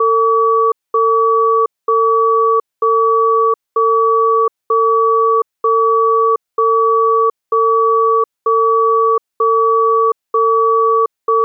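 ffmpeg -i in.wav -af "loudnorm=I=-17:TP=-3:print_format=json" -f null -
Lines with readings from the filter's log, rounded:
"input_i" : "-13.2",
"input_tp" : "-6.0",
"input_lra" : "0.0",
"input_thresh" : "-23.2",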